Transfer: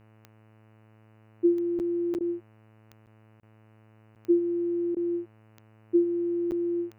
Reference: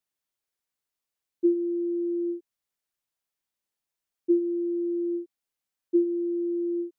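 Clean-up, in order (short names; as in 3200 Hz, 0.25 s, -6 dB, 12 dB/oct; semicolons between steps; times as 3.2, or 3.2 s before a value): de-click; de-hum 109.2 Hz, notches 27; interpolate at 1.79/2.14/3.06/3.4/4.15/6.51, 9 ms; interpolate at 2.19/3.41/4.95, 15 ms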